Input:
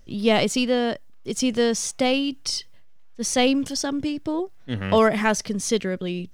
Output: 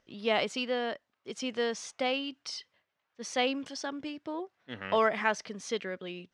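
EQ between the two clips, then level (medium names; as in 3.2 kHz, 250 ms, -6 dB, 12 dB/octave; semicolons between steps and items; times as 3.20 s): high-pass 1.3 kHz 6 dB/octave; low-pass 1.8 kHz 6 dB/octave; distance through air 59 m; 0.0 dB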